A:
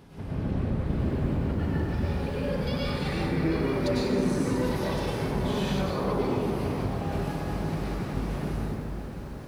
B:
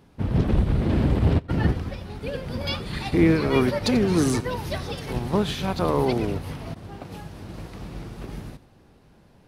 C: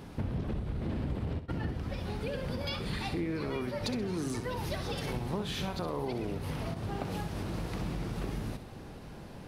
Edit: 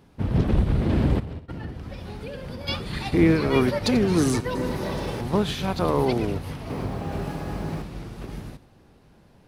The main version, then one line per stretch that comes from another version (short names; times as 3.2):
B
1.2–2.68 from C
4.55–5.21 from A
6.7–7.82 from A